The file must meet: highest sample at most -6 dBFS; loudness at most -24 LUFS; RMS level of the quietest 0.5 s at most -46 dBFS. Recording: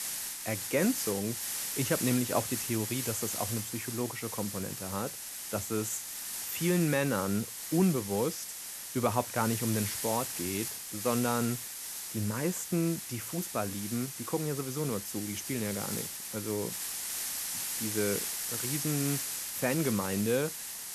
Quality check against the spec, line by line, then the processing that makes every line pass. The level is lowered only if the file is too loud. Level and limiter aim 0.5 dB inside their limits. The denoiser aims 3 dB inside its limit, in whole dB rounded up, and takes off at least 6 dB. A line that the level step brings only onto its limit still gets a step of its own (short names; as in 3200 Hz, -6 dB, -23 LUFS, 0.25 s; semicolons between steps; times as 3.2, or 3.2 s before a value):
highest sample -13.0 dBFS: OK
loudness -32.0 LUFS: OK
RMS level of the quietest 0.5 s -42 dBFS: fail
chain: denoiser 7 dB, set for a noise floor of -42 dBFS